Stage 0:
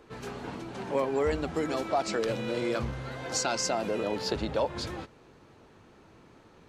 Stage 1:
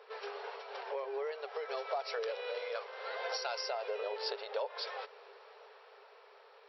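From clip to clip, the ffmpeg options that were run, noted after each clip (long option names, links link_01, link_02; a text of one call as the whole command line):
ffmpeg -i in.wav -af "acompressor=threshold=-38dB:ratio=6,afftfilt=real='re*between(b*sr/4096,390,5700)':imag='im*between(b*sr/4096,390,5700)':win_size=4096:overlap=0.75,dynaudnorm=framelen=240:gausssize=11:maxgain=3.5dB,volume=1dB" out.wav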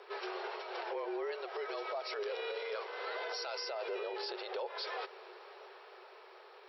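ffmpeg -i in.wav -af "afreqshift=-36,lowshelf=frequency=260:gain=-5.5,alimiter=level_in=11dB:limit=-24dB:level=0:latency=1:release=36,volume=-11dB,volume=4dB" out.wav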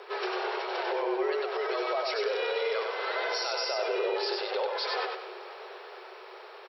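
ffmpeg -i in.wav -af "aecho=1:1:96|192|288|384:0.668|0.221|0.0728|0.024,volume=7.5dB" out.wav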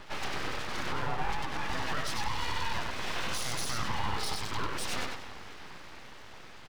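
ffmpeg -i in.wav -af "aeval=exprs='abs(val(0))':channel_layout=same" out.wav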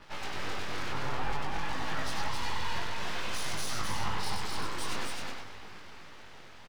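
ffmpeg -i in.wav -af "flanger=delay=19:depth=3.8:speed=0.54,aeval=exprs='sgn(val(0))*max(abs(val(0))-0.00188,0)':channel_layout=same,aecho=1:1:263:0.708" out.wav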